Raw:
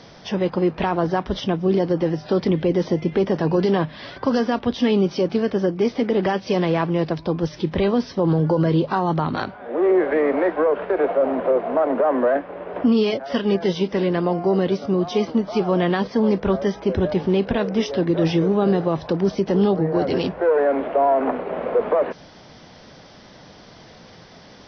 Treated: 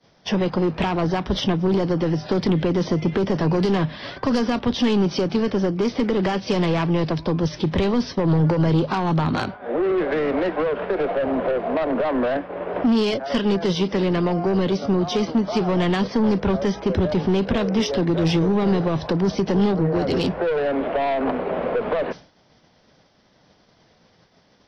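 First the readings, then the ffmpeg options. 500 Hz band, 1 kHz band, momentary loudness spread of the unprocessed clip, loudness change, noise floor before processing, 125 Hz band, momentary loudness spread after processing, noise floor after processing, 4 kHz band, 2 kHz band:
-2.5 dB, -1.5 dB, 5 LU, -1.0 dB, -45 dBFS, +2.0 dB, 4 LU, -58 dBFS, +3.0 dB, +0.5 dB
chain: -filter_complex "[0:a]aeval=exprs='0.376*(cos(1*acos(clip(val(0)/0.376,-1,1)))-cos(1*PI/2))+0.0335*(cos(2*acos(clip(val(0)/0.376,-1,1)))-cos(2*PI/2))+0.0188*(cos(4*acos(clip(val(0)/0.376,-1,1)))-cos(4*PI/2))+0.0531*(cos(5*acos(clip(val(0)/0.376,-1,1)))-cos(5*PI/2))':c=same,acrossover=split=220|3000[s0][s1][s2];[s1]acompressor=threshold=0.0631:ratio=2.5[s3];[s0][s3][s2]amix=inputs=3:normalize=0,agate=range=0.0224:threshold=0.0398:ratio=3:detection=peak,volume=1.12"

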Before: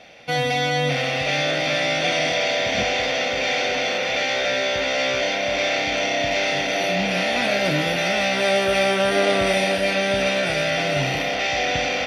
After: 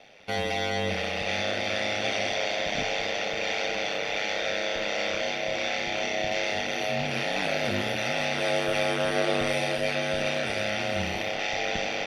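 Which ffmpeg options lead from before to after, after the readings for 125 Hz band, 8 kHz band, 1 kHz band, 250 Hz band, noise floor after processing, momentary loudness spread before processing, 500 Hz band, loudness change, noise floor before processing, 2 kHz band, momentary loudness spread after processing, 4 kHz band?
-7.5 dB, -7.0 dB, -7.0 dB, -6.5 dB, -31 dBFS, 3 LU, -7.0 dB, -7.0 dB, -24 dBFS, -7.0 dB, 3 LU, -7.0 dB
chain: -af "aeval=exprs='val(0)*sin(2*PI*50*n/s)':c=same,volume=0.631"

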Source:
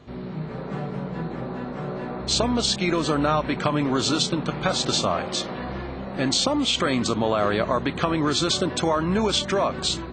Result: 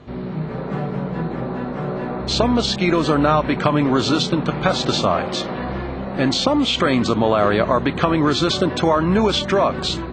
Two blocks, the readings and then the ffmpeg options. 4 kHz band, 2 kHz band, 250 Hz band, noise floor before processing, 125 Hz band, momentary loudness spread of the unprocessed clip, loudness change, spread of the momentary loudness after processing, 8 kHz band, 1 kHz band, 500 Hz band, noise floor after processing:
+2.0 dB, +4.5 dB, +6.0 dB, -34 dBFS, +6.0 dB, 10 LU, +4.5 dB, 9 LU, -4.0 dB, +5.5 dB, +5.5 dB, -28 dBFS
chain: -filter_complex "[0:a]aemphasis=mode=reproduction:type=cd,acrossover=split=6400[s0][s1];[s1]acompressor=threshold=0.00447:ratio=4:attack=1:release=60[s2];[s0][s2]amix=inputs=2:normalize=0,volume=1.88"

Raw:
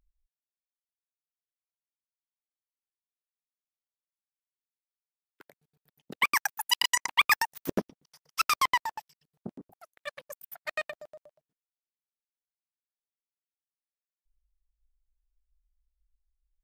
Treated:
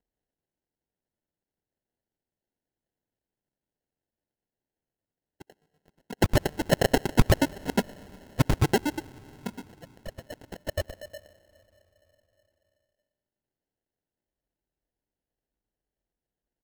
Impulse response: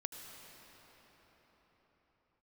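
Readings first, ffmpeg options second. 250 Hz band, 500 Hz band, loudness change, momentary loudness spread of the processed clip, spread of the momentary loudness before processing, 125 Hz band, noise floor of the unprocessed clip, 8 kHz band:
+13.5 dB, +12.5 dB, +1.0 dB, 21 LU, 22 LU, +22.5 dB, under -85 dBFS, -4.0 dB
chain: -filter_complex "[0:a]highpass=140,aecho=1:1:4.5:0.98,asplit=2[s0][s1];[1:a]atrim=start_sample=2205,asetrate=48510,aresample=44100[s2];[s1][s2]afir=irnorm=-1:irlink=0,volume=0.224[s3];[s0][s3]amix=inputs=2:normalize=0,acrusher=samples=37:mix=1:aa=0.000001"

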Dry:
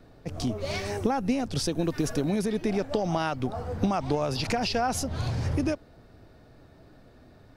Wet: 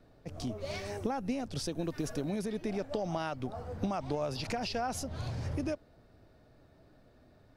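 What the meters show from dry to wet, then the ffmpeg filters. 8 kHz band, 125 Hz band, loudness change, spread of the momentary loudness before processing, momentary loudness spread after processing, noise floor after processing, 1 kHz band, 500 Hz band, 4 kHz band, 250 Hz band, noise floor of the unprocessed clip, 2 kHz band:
-8.0 dB, -8.0 dB, -7.5 dB, 5 LU, 5 LU, -62 dBFS, -7.5 dB, -7.0 dB, -8.0 dB, -8.0 dB, -55 dBFS, -8.0 dB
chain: -af "equalizer=f=600:w=6:g=3.5,volume=0.398"

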